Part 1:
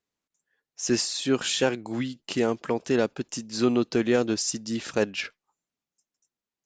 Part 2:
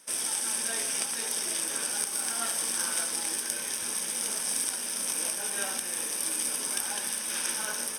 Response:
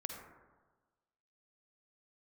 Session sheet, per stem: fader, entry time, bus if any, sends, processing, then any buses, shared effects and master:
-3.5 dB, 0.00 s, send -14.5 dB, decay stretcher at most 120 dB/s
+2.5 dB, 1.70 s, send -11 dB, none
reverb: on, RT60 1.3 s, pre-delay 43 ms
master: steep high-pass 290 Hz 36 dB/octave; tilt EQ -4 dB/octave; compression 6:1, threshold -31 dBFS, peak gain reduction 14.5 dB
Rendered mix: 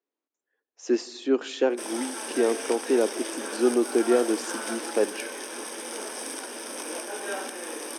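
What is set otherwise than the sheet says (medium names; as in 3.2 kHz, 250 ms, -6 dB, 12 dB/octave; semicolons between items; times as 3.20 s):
stem 1: missing decay stretcher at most 120 dB/s; master: missing compression 6:1, threshold -31 dBFS, peak gain reduction 14.5 dB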